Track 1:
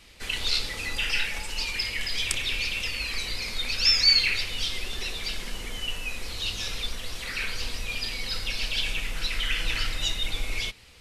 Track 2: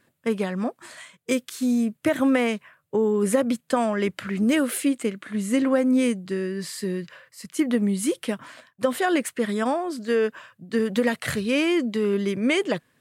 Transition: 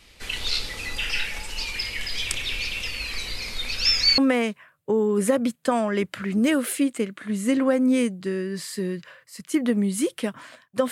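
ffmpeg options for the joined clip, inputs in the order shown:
-filter_complex "[0:a]apad=whole_dur=10.91,atrim=end=10.91,atrim=end=4.182[s0];[1:a]atrim=start=2.228:end=8.96[s1];[s0][s1]acrossfade=d=0.004:c1=hsin:c2=hsin"

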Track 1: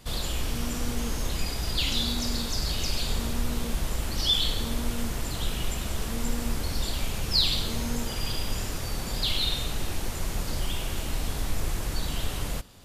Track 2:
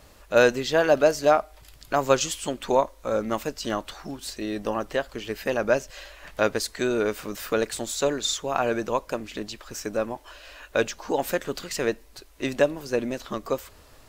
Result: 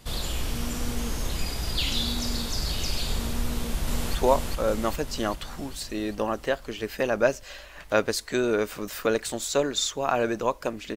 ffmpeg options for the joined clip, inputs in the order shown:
-filter_complex "[0:a]apad=whole_dur=10.96,atrim=end=10.96,atrim=end=4.152[s0];[1:a]atrim=start=2.618:end=9.43[s1];[s0][s1]acrossfade=d=0.004:c1=hsin:c2=hsin,asplit=2[s2][s3];[s3]afade=t=in:st=3.47:d=0.01,afade=t=out:st=4.15:d=0.01,aecho=0:1:400|800|1200|1600|2000|2400|2800|3200|3600|4000|4400:0.841395|0.546907|0.355489|0.231068|0.150194|0.0976263|0.0634571|0.0412471|0.0268106|0.0174269|0.0113275[s4];[s2][s4]amix=inputs=2:normalize=0"

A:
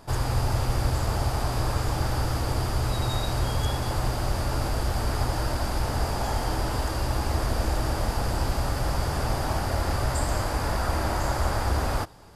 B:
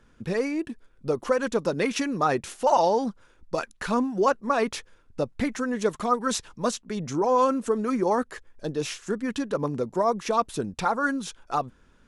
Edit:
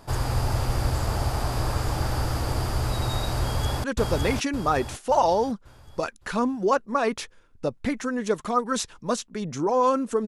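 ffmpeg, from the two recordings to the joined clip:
-filter_complex "[0:a]apad=whole_dur=10.27,atrim=end=10.27,atrim=end=3.842[s0];[1:a]atrim=start=1.388:end=7.82[s1];[s0][s1]acrossfade=d=0.004:c1=hsin:c2=hsin,asplit=2[s2][s3];[s3]afade=t=in:st=3.41:d=0.01,afade=t=out:st=3.84:d=0.01,aecho=0:1:560|1120|1680|2240|2800:0.841395|0.336558|0.134623|0.0538493|0.0215397[s4];[s2][s4]amix=inputs=2:normalize=0"

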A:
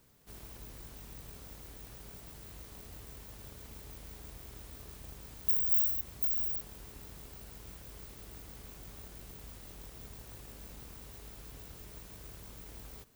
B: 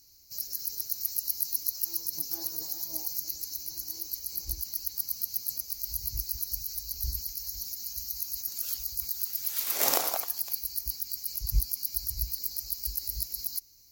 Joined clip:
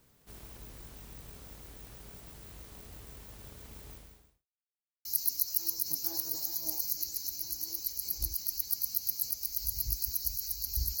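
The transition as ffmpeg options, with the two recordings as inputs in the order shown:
-filter_complex "[0:a]apad=whole_dur=11,atrim=end=11,asplit=2[s0][s1];[s0]atrim=end=4.47,asetpts=PTS-STARTPTS,afade=t=out:st=3.92:d=0.55:c=qua[s2];[s1]atrim=start=4.47:end=5.05,asetpts=PTS-STARTPTS,volume=0[s3];[1:a]atrim=start=1.32:end=7.27,asetpts=PTS-STARTPTS,afade=t=in:d=0.004:c=hsin[s4];[s2][s3][s4]concat=n=3:v=0:a=1"

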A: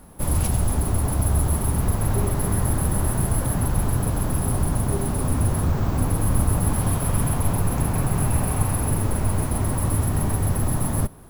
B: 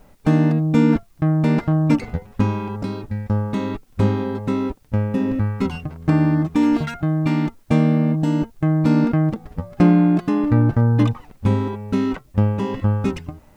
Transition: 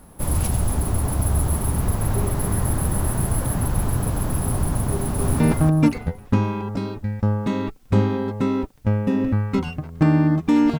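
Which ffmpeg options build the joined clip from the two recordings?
-filter_complex "[0:a]apad=whole_dur=10.79,atrim=end=10.79,atrim=end=5.402[s0];[1:a]atrim=start=1.468:end=6.86[s1];[s0][s1]acrossfade=d=0.004:c1=hsin:c2=hsin,asplit=2[s2][s3];[s3]afade=t=in:st=4.9:d=0.01,afade=t=out:st=5.4:d=0.01,aecho=0:1:290|580|870|1160:0.749894|0.187474|0.0468684|0.0117171[s4];[s2][s4]amix=inputs=2:normalize=0"

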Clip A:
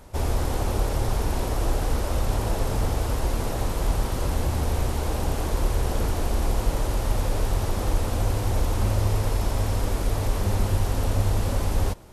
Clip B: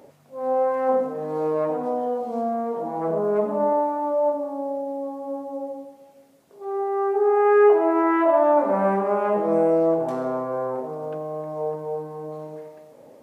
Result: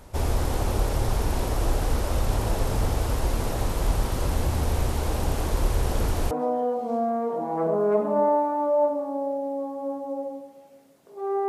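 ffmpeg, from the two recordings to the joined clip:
-filter_complex "[0:a]apad=whole_dur=11.48,atrim=end=11.48,atrim=end=6.312[s0];[1:a]atrim=start=1.748:end=6.92[s1];[s0][s1]acrossfade=d=0.004:c1=hsin:c2=hsin"

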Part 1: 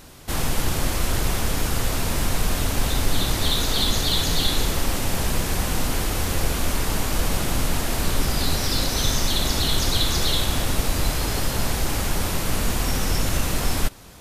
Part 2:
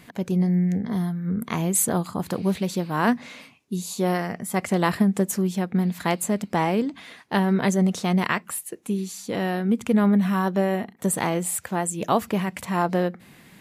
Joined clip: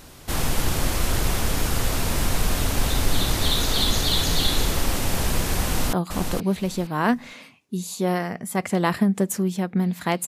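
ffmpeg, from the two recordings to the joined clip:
-filter_complex "[0:a]apad=whole_dur=10.27,atrim=end=10.27,atrim=end=5.932[s0];[1:a]atrim=start=1.918:end=6.26[s1];[s0][s1]acrossfade=d=0.004:c1=hsin:c2=hsin,asplit=2[s2][s3];[s3]afade=t=in:st=5.63:d=0.01,afade=t=out:st=5.93:d=0.01,aecho=0:1:470|940|1410:0.530884|0.106177|0.0212354[s4];[s2][s4]amix=inputs=2:normalize=0"

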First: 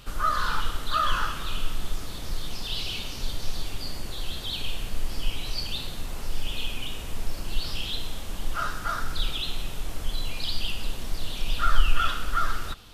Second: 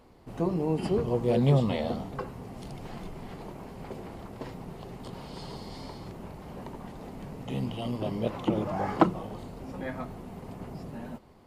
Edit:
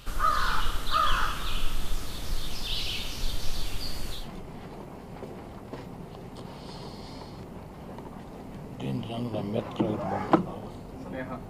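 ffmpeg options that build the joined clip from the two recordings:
-filter_complex "[0:a]apad=whole_dur=11.49,atrim=end=11.49,atrim=end=4.3,asetpts=PTS-STARTPTS[s0];[1:a]atrim=start=2.8:end=10.17,asetpts=PTS-STARTPTS[s1];[s0][s1]acrossfade=d=0.18:c1=tri:c2=tri"

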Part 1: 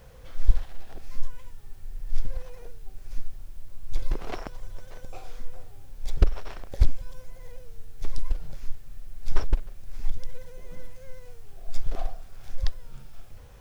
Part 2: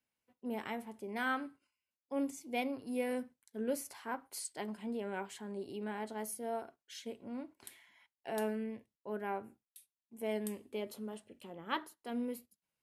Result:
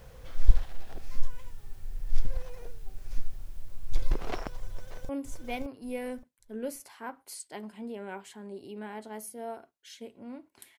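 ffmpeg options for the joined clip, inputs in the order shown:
-filter_complex "[0:a]apad=whole_dur=10.78,atrim=end=10.78,atrim=end=5.092[s0];[1:a]atrim=start=2.138:end=7.83[s1];[s0][s1]acrossfade=d=0.004:c1=hsin:c2=hsin,asplit=2[s2][s3];[s3]afade=t=in:st=4.68:d=0.01,afade=t=out:st=5.09:d=0.01,aecho=0:1:570|1140|1710:0.707946|0.141589|0.0283178[s4];[s2][s4]amix=inputs=2:normalize=0"

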